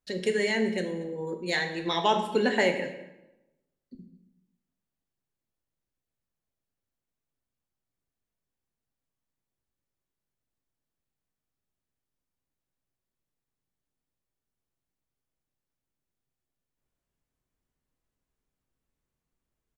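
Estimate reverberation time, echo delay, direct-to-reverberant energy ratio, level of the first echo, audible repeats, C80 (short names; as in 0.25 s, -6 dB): 0.95 s, 0.235 s, 5.0 dB, -21.0 dB, 1, 10.0 dB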